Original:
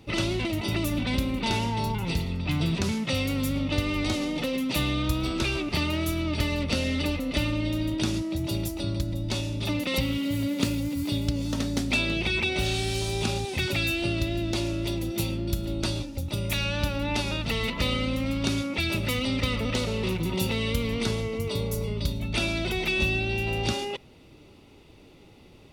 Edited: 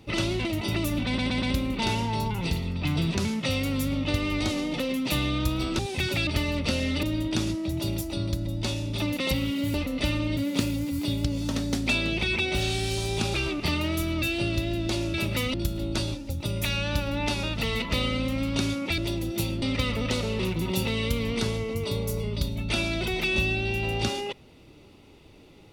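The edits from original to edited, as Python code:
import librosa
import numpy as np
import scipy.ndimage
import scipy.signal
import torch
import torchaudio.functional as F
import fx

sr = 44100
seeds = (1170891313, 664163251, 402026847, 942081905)

y = fx.edit(x, sr, fx.stutter(start_s=1.06, slice_s=0.12, count=4),
    fx.swap(start_s=5.43, length_s=0.88, other_s=13.38, other_length_s=0.48),
    fx.move(start_s=7.07, length_s=0.63, to_s=10.41),
    fx.swap(start_s=14.78, length_s=0.64, other_s=18.86, other_length_s=0.4), tone=tone)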